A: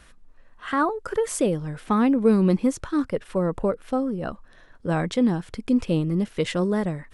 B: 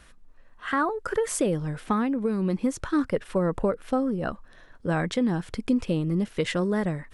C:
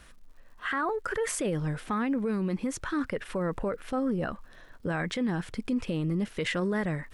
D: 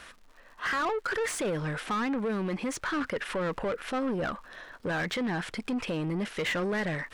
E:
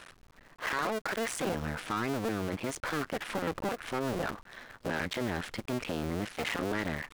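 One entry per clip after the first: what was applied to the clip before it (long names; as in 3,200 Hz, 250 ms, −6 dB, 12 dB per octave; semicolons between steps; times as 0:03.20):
downward compressor, threshold −20 dBFS, peak gain reduction 7.5 dB; dynamic equaliser 1,700 Hz, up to +4 dB, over −43 dBFS, Q 2; speech leveller 0.5 s
dynamic equaliser 2,000 Hz, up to +6 dB, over −44 dBFS, Q 1; brickwall limiter −22 dBFS, peak gain reduction 9.5 dB; surface crackle 180 per second −55 dBFS
mid-hump overdrive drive 18 dB, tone 4,100 Hz, clips at −21.5 dBFS; level −2 dB
sub-harmonics by changed cycles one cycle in 2, muted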